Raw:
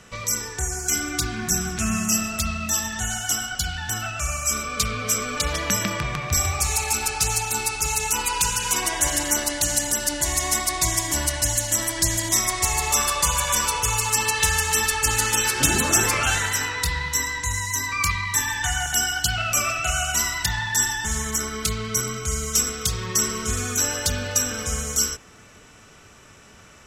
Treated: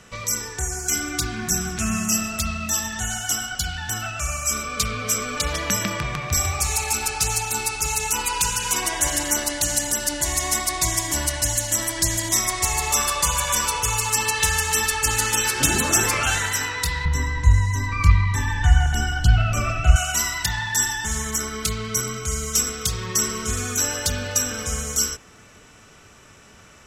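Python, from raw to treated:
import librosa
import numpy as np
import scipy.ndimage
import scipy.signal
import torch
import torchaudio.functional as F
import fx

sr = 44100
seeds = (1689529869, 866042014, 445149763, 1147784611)

y = fx.riaa(x, sr, side='playback', at=(17.05, 19.96))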